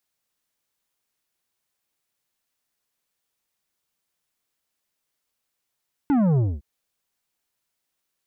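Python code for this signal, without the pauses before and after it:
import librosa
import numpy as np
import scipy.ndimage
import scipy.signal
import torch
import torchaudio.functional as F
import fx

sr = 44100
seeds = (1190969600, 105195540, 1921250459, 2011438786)

y = fx.sub_drop(sr, level_db=-17.5, start_hz=300.0, length_s=0.51, drive_db=9.5, fade_s=0.23, end_hz=65.0)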